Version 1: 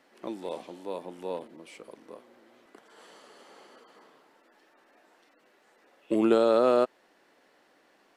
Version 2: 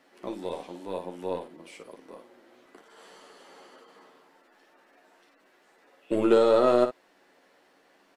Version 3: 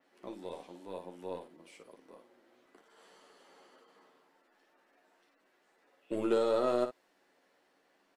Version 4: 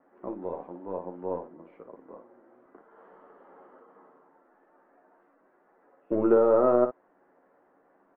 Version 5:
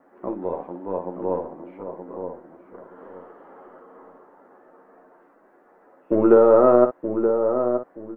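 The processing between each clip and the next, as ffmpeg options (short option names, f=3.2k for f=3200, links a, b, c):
-filter_complex "[0:a]aeval=exprs='0.299*(cos(1*acos(clip(val(0)/0.299,-1,1)))-cos(1*PI/2))+0.0075*(cos(8*acos(clip(val(0)/0.299,-1,1)))-cos(8*PI/2))':c=same,asplit=2[a][b];[b]aecho=0:1:11|57:0.531|0.376[c];[a][c]amix=inputs=2:normalize=0"
-af "adynamicequalizer=threshold=0.00631:dfrequency=4500:dqfactor=0.7:tfrequency=4500:tqfactor=0.7:attack=5:release=100:ratio=0.375:range=2:mode=boostabove:tftype=highshelf,volume=-9dB"
-af "lowpass=f=1.4k:w=0.5412,lowpass=f=1.4k:w=1.3066,volume=8.5dB"
-filter_complex "[0:a]asplit=2[a][b];[b]adelay=925,lowpass=f=1.2k:p=1,volume=-6.5dB,asplit=2[c][d];[d]adelay=925,lowpass=f=1.2k:p=1,volume=0.28,asplit=2[e][f];[f]adelay=925,lowpass=f=1.2k:p=1,volume=0.28,asplit=2[g][h];[h]adelay=925,lowpass=f=1.2k:p=1,volume=0.28[i];[a][c][e][g][i]amix=inputs=5:normalize=0,volume=7dB"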